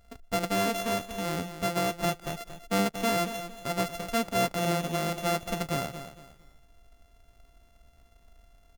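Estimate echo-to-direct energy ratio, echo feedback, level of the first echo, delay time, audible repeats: -10.5 dB, 30%, -11.0 dB, 229 ms, 3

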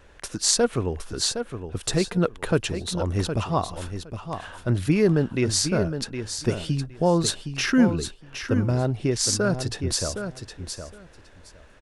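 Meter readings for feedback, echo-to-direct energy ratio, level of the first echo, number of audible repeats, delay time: 16%, -8.5 dB, -8.5 dB, 2, 764 ms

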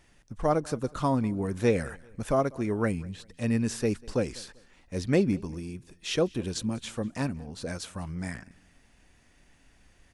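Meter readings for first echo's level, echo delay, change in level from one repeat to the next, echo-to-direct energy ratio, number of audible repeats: -24.0 dB, 195 ms, -9.0 dB, -23.5 dB, 2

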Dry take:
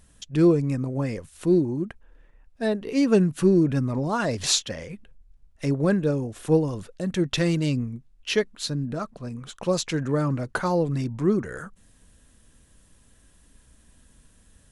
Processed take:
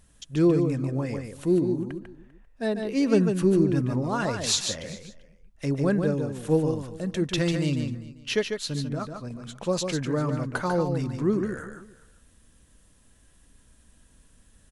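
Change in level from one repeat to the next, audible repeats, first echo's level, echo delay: no regular repeats, 3, -6.0 dB, 146 ms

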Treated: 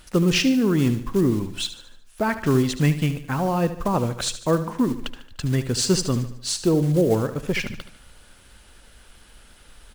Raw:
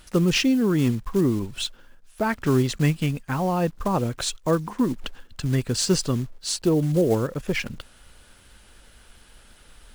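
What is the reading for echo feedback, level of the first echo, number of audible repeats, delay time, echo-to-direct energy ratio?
49%, -12.5 dB, 4, 74 ms, -11.5 dB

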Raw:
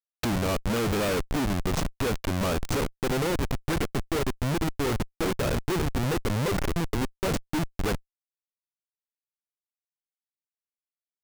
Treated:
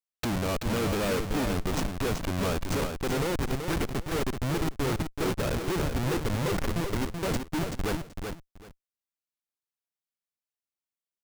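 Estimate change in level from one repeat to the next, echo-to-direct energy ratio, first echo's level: -14.0 dB, -6.0 dB, -6.0 dB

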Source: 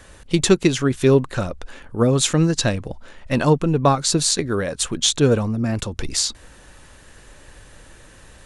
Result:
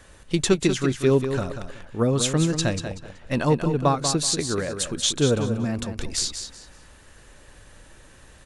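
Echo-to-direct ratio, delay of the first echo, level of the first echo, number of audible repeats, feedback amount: -8.0 dB, 189 ms, -8.5 dB, 3, 24%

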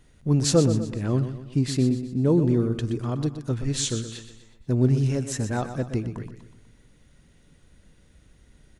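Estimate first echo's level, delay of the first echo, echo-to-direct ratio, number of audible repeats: -10.5 dB, 123 ms, -9.5 dB, 4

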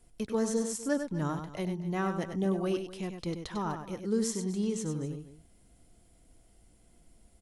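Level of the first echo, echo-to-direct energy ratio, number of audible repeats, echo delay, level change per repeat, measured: -7.5 dB, -7.0 dB, 2, 98 ms, no regular repeats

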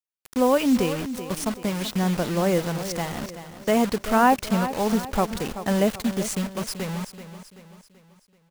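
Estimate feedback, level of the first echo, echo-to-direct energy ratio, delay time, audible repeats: 46%, -12.0 dB, -11.0 dB, 383 ms, 4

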